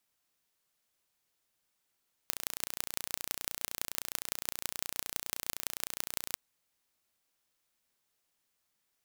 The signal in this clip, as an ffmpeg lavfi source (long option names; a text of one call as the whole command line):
ffmpeg -f lavfi -i "aevalsrc='0.631*eq(mod(n,1485),0)*(0.5+0.5*eq(mod(n,7425),0))':duration=4.07:sample_rate=44100" out.wav